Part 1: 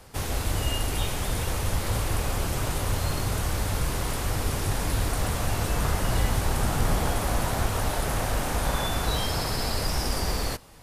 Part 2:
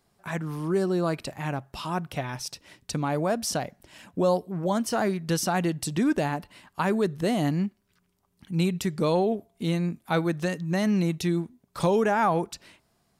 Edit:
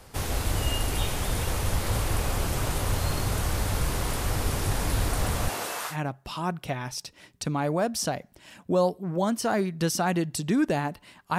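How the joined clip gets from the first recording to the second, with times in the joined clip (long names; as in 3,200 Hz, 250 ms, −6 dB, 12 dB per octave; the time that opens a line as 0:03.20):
part 1
0:05.48–0:05.97: high-pass filter 240 Hz → 1,300 Hz
0:05.92: continue with part 2 from 0:01.40, crossfade 0.10 s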